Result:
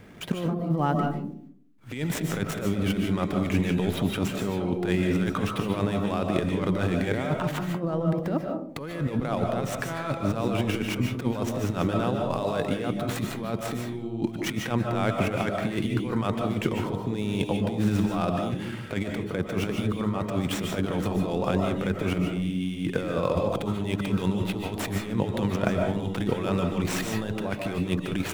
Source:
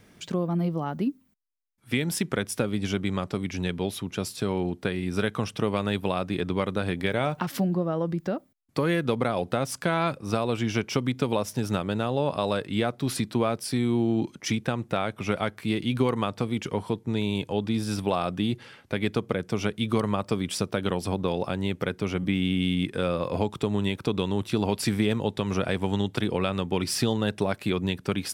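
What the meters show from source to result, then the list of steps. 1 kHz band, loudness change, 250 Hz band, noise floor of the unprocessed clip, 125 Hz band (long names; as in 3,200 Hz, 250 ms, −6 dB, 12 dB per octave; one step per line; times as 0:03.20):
0.0 dB, 0.0 dB, +0.5 dB, −57 dBFS, +1.5 dB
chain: running median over 9 samples
compressor whose output falls as the input rises −30 dBFS, ratio −0.5
comb and all-pass reverb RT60 0.58 s, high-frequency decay 0.3×, pre-delay 105 ms, DRR 2.5 dB
level +3 dB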